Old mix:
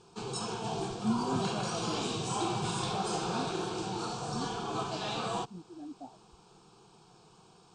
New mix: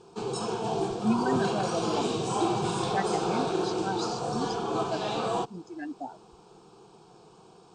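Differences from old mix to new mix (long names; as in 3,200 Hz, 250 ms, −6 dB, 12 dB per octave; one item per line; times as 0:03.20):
speech: remove inverse Chebyshev low-pass filter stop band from 4,200 Hz, stop band 80 dB
master: add parametric band 450 Hz +8.5 dB 2.2 octaves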